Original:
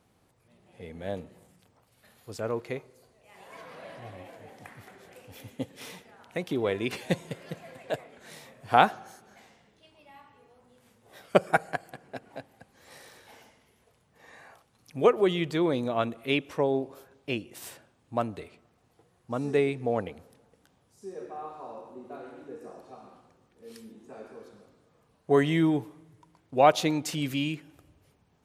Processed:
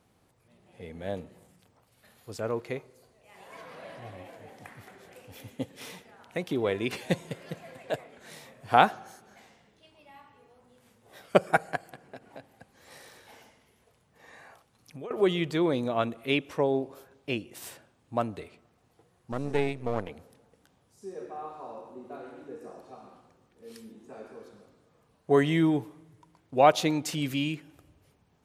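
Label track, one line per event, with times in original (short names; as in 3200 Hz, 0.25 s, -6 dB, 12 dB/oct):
11.830000	15.110000	compressor 5:1, threshold -39 dBFS
19.320000	20.090000	half-wave gain negative side -12 dB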